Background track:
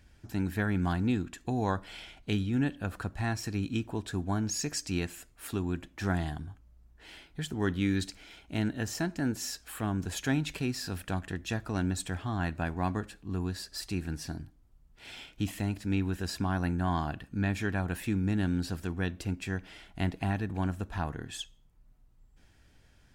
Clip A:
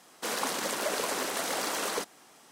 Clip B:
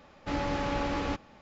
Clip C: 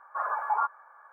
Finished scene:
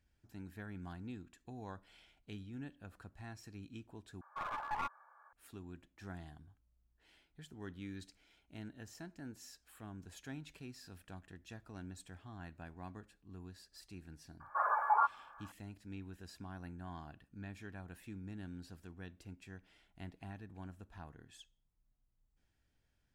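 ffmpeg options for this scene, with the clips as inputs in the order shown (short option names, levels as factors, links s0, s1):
-filter_complex "[3:a]asplit=2[s0][s1];[0:a]volume=0.126[s2];[s0]aeval=exprs='clip(val(0),-1,0.0282)':c=same[s3];[s2]asplit=2[s4][s5];[s4]atrim=end=4.214[s6];[s3]atrim=end=1.12,asetpts=PTS-STARTPTS,volume=0.335[s7];[s5]atrim=start=5.326[s8];[s1]atrim=end=1.12,asetpts=PTS-STARTPTS,volume=0.75,afade=t=in:d=0.004:c=hsin,afade=t=out:st=1.116:d=0.004:c=hsin,adelay=14400[s9];[s6][s7]acrossfade=d=0.004:c1=hsin:c2=hsin[s10];[s10][s8]acrossfade=d=0.004:c1=hsin:c2=hsin[s11];[s11][s9]amix=inputs=2:normalize=0"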